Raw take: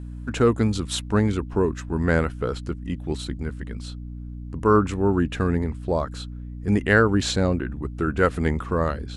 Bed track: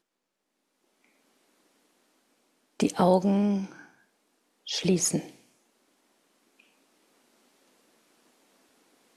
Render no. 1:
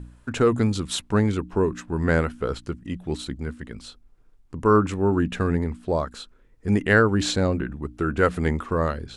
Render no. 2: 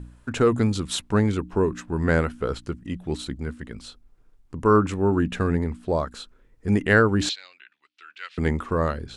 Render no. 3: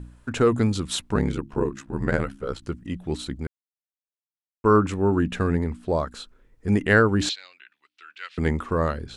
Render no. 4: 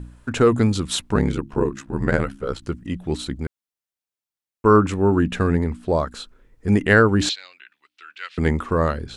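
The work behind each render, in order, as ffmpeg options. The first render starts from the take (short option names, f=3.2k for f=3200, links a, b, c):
-af "bandreject=f=60:t=h:w=4,bandreject=f=120:t=h:w=4,bandreject=f=180:t=h:w=4,bandreject=f=240:t=h:w=4,bandreject=f=300:t=h:w=4"
-filter_complex "[0:a]asettb=1/sr,asplit=3[a][b][c];[a]atrim=end=7.294[d];[b]atrim=start=7.29:end=8.38,asetpts=PTS-STARTPTS,afade=t=in:d=0.004:c=qsin,afade=t=out:st=1.086:d=0.004:c=qsin,asuperpass=centerf=3300:order=4:qfactor=1.3[e];[c]atrim=start=8.376[f];[d][e]acrossfade=d=0.004:c1=hsin:c2=qsin[g];[g][f]acrossfade=d=0.004:c1=qsin:c2=hsin"
-filter_complex "[0:a]asplit=3[a][b][c];[a]afade=t=out:st=1.14:d=0.02[d];[b]aeval=exprs='val(0)*sin(2*PI*34*n/s)':c=same,afade=t=in:st=1.14:d=0.02,afade=t=out:st=2.61:d=0.02[e];[c]afade=t=in:st=2.61:d=0.02[f];[d][e][f]amix=inputs=3:normalize=0,asplit=3[g][h][i];[g]atrim=end=3.47,asetpts=PTS-STARTPTS,afade=t=out:st=3.466:d=0.004:c=hsin[j];[h]atrim=start=3.47:end=4.64,asetpts=PTS-STARTPTS,volume=0[k];[i]atrim=start=4.64,asetpts=PTS-STARTPTS,afade=t=in:d=0.004:c=hsin[l];[j][k][l]concat=n=3:v=0:a=1"
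-af "volume=3.5dB,alimiter=limit=-2dB:level=0:latency=1"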